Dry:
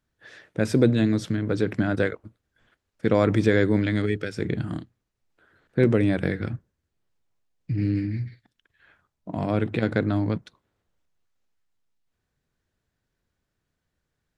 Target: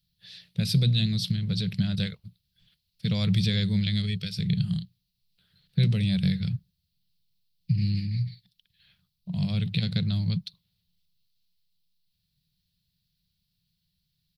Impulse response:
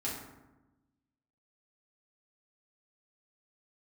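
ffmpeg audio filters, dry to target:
-af "firequalizer=gain_entry='entry(100,0);entry(180,9);entry(260,-26);entry(420,-19);entry(1500,-17);entry(2700,3);entry(4300,15);entry(6700,-5);entry(12000,10)':delay=0.05:min_phase=1"

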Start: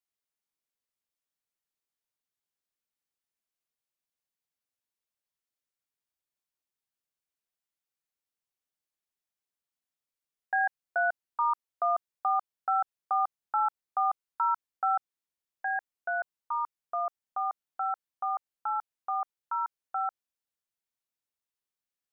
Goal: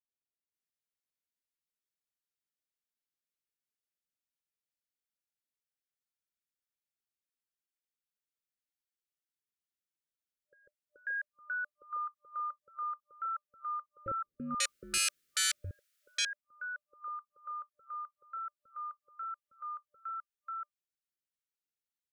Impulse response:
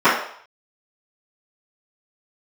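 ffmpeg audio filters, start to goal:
-filter_complex "[0:a]asettb=1/sr,asplit=3[a][b][c];[a]atrim=end=14.064[d];[b]atrim=start=14.06:end=15.71,asetpts=PTS-STARTPTS,afade=t=in:d=0.004:c=qsin,afade=t=out:st=1.646:d=0.004:c=qsin,aeval=exprs='0.106*sin(PI/2*6.31*val(0)/0.106)':c=same[e];[c]atrim=start=15.706[f];[d][e]acrossfade=d=0.004:c1=hsin:c2=qsin[g];[g][f]acrossfade=d=0.004:c1=qsin:c2=hsin,acrossover=split=650[h][i];[i]adelay=540[j];[h][j]amix=inputs=2:normalize=0,afftfilt=real='re*(1-between(b*sr/4096,600,1200))':imag='im*(1-between(b*sr/4096,600,1200))':win_size=4096:overlap=0.75,volume=-6dB"

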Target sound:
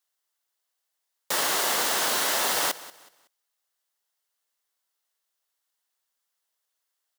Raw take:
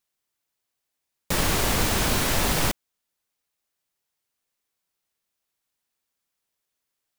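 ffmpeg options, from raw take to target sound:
-af "highpass=560,equalizer=f=2.4k:w=7.2:g=-8,aecho=1:1:186|372|558:0.126|0.039|0.0121,volume=1dB"

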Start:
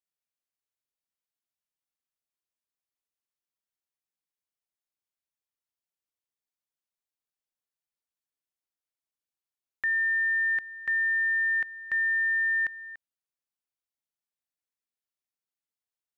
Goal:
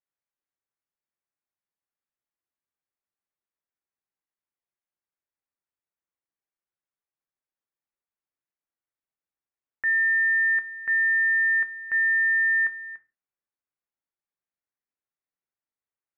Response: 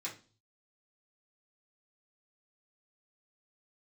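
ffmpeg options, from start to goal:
-filter_complex "[0:a]lowpass=f=2.1k:w=0.5412,lowpass=f=2.1k:w=1.3066,asplit=2[a][b];[1:a]atrim=start_sample=2205,afade=t=out:st=0.24:d=0.01,atrim=end_sample=11025[c];[b][c]afir=irnorm=-1:irlink=0,volume=-7dB[d];[a][d]amix=inputs=2:normalize=0"

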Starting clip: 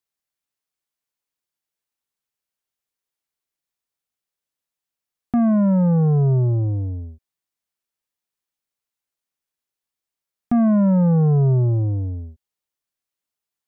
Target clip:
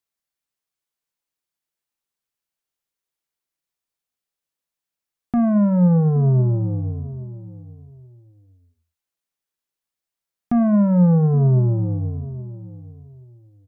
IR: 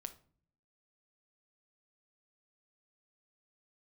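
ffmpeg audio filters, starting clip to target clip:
-filter_complex "[0:a]asplit=2[a][b];[b]adelay=823,lowpass=f=820:p=1,volume=-15.5dB,asplit=2[c][d];[d]adelay=823,lowpass=f=820:p=1,volume=0.23[e];[a][c][e]amix=inputs=3:normalize=0,asplit=2[f][g];[1:a]atrim=start_sample=2205,atrim=end_sample=6615[h];[g][h]afir=irnorm=-1:irlink=0,volume=5.5dB[i];[f][i]amix=inputs=2:normalize=0,volume=-7dB"

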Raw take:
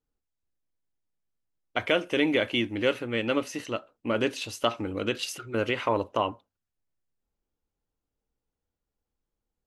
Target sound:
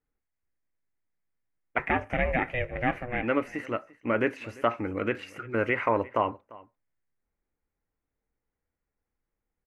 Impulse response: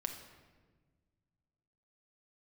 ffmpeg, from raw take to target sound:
-filter_complex "[0:a]acrossover=split=3200[a][b];[b]acompressor=threshold=-45dB:ratio=4:attack=1:release=60[c];[a][c]amix=inputs=2:normalize=0,asettb=1/sr,asplit=3[d][e][f];[d]atrim=end=1.784[g];[e]atrim=start=1.78:end=3.23,asetpts=PTS-STARTPTS,afade=t=in:d=0.004:c=qsin,afade=t=out:st=1.446:d=0.004:c=qsin,aeval=exprs='val(0)*sin(2*PI*250*n/s)':c=same[h];[f]atrim=start=3.226[i];[g][h]acrossfade=d=0.004:c1=hsin:c2=qsin[j];[j][i]acrossfade=d=0.004:c1=qsin:c2=hsin,highshelf=f=2.7k:t=q:w=3:g=-9,asplit=2[k][l];[l]aecho=0:1:346:0.0841[m];[k][m]amix=inputs=2:normalize=0"

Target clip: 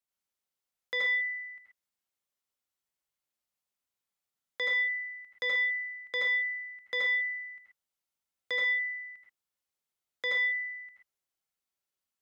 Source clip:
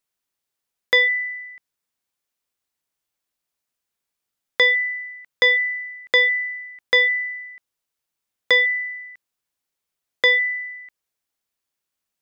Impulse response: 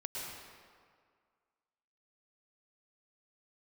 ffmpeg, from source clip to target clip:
-filter_complex "[0:a]acrossover=split=110|1400[a][b][c];[a]acrusher=samples=23:mix=1:aa=0.000001[d];[d][b][c]amix=inputs=3:normalize=0[e];[1:a]atrim=start_sample=2205,afade=t=out:st=0.24:d=0.01,atrim=end_sample=11025,asetrate=61740,aresample=44100[f];[e][f]afir=irnorm=-1:irlink=0,alimiter=limit=-20dB:level=0:latency=1,volume=-3dB"

